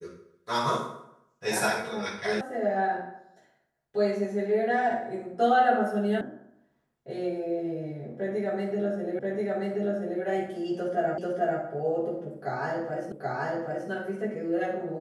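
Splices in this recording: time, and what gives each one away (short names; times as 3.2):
2.41 sound cut off
6.21 sound cut off
9.19 repeat of the last 1.03 s
11.18 repeat of the last 0.44 s
13.12 repeat of the last 0.78 s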